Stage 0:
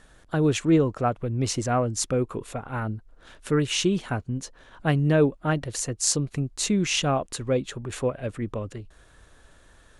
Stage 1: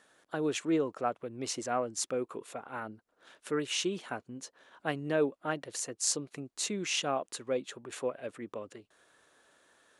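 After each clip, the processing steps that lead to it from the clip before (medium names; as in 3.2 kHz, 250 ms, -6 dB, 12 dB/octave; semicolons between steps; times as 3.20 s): high-pass 310 Hz 12 dB/octave; trim -6.5 dB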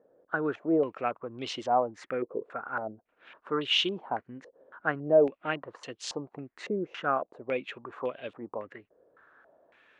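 step-sequenced low-pass 3.6 Hz 510–3200 Hz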